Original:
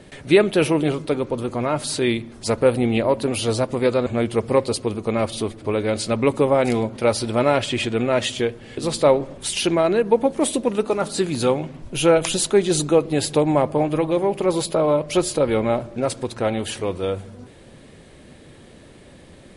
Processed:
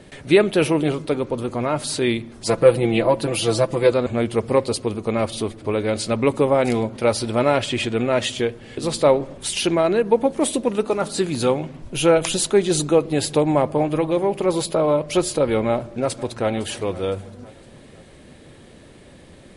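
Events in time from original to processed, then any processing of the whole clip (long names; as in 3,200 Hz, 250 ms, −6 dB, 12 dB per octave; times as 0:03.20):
0:02.46–0:03.92: comb filter 6 ms, depth 76%
0:15.67–0:16.51: delay throw 510 ms, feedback 45%, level −17.5 dB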